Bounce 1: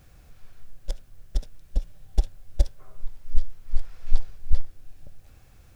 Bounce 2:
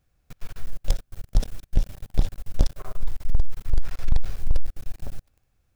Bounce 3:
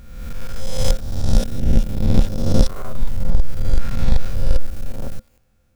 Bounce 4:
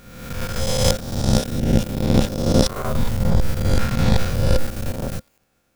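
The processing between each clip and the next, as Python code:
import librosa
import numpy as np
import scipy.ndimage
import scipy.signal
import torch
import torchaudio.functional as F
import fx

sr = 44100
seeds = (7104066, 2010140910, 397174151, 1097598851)

y1 = fx.leveller(x, sr, passes=5)
y1 = F.gain(torch.from_numpy(y1), -6.5).numpy()
y2 = fx.spec_swells(y1, sr, rise_s=1.16)
y2 = fx.small_body(y2, sr, hz=(220.0, 520.0, 1400.0), ring_ms=95, db=11)
y2 = F.gain(torch.from_numpy(y2), 3.5).numpy()
y3 = fx.spec_clip(y2, sr, under_db=21)
y3 = F.gain(torch.from_numpy(y3), -6.5).numpy()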